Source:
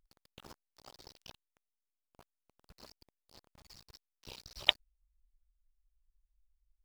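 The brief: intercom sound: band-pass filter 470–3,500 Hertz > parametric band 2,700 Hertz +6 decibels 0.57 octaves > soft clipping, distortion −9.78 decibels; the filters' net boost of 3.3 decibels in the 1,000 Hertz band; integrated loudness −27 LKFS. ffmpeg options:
ffmpeg -i in.wav -af "highpass=470,lowpass=3500,equalizer=frequency=1000:width_type=o:gain=4.5,equalizer=frequency=2700:width_type=o:width=0.57:gain=6,asoftclip=threshold=-10.5dB,volume=9dB" out.wav

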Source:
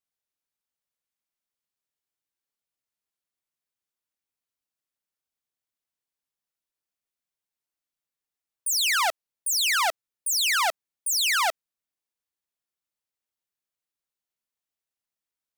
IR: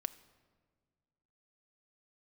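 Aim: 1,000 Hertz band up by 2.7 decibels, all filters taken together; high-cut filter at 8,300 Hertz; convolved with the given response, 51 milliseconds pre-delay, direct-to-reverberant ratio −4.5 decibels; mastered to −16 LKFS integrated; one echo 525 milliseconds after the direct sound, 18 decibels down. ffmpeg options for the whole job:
-filter_complex "[0:a]lowpass=8300,equalizer=frequency=1000:width_type=o:gain=3.5,aecho=1:1:525:0.126,asplit=2[link_01][link_02];[1:a]atrim=start_sample=2205,adelay=51[link_03];[link_02][link_03]afir=irnorm=-1:irlink=0,volume=5.5dB[link_04];[link_01][link_04]amix=inputs=2:normalize=0,volume=1.5dB"

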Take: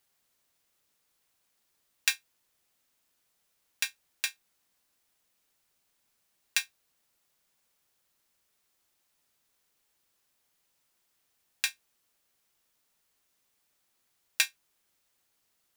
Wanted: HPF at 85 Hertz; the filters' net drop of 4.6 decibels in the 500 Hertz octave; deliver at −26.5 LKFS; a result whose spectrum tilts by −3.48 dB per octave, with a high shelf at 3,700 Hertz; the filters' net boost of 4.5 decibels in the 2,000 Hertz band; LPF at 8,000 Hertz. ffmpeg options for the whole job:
ffmpeg -i in.wav -af "highpass=85,lowpass=8000,equalizer=frequency=500:width_type=o:gain=-5.5,equalizer=frequency=2000:width_type=o:gain=5,highshelf=frequency=3700:gain=3.5,volume=3dB" out.wav

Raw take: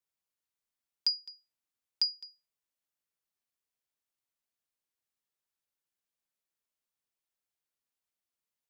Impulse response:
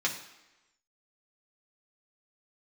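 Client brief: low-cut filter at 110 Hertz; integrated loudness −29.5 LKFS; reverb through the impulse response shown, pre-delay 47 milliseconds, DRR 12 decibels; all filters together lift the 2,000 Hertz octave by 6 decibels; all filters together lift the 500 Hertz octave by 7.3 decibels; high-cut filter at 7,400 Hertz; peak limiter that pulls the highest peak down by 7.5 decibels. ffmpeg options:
-filter_complex "[0:a]highpass=110,lowpass=7400,equalizer=frequency=500:width_type=o:gain=8.5,equalizer=frequency=2000:width_type=o:gain=7,alimiter=level_in=0.5dB:limit=-24dB:level=0:latency=1,volume=-0.5dB,asplit=2[link_01][link_02];[1:a]atrim=start_sample=2205,adelay=47[link_03];[link_02][link_03]afir=irnorm=-1:irlink=0,volume=-20dB[link_04];[link_01][link_04]amix=inputs=2:normalize=0,volume=6.5dB"

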